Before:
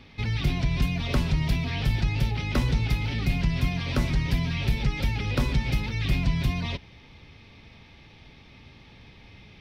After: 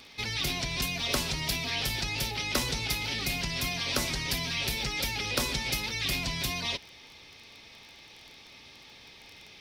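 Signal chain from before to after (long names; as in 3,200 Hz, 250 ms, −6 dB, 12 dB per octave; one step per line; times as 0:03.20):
bass and treble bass −14 dB, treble +14 dB
surface crackle 15 per second −37 dBFS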